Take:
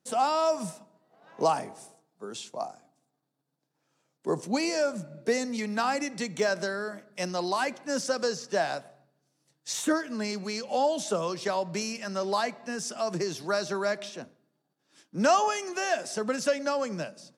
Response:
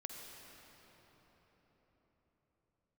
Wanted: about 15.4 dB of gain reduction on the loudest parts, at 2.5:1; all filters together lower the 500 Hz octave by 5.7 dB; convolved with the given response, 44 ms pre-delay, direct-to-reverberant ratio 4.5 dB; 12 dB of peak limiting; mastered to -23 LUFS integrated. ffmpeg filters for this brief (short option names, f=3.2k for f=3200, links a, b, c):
-filter_complex "[0:a]equalizer=f=500:t=o:g=-7.5,acompressor=threshold=-45dB:ratio=2.5,alimiter=level_in=17dB:limit=-24dB:level=0:latency=1,volume=-17dB,asplit=2[a][b];[1:a]atrim=start_sample=2205,adelay=44[c];[b][c]afir=irnorm=-1:irlink=0,volume=-2dB[d];[a][d]amix=inputs=2:normalize=0,volume=25dB"